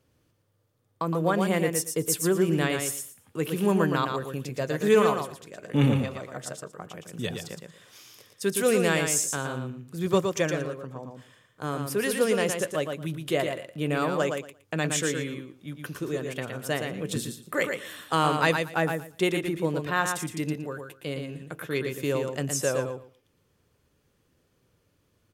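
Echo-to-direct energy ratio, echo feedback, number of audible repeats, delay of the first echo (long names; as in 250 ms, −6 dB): −5.5 dB, 17%, 2, 116 ms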